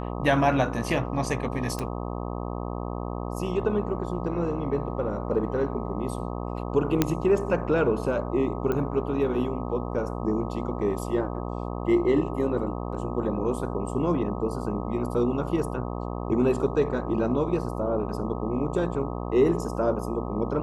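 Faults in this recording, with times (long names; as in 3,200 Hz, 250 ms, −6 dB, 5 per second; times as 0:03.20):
mains buzz 60 Hz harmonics 21 −32 dBFS
0:01.79: click
0:07.02: click −6 dBFS
0:08.72: click −16 dBFS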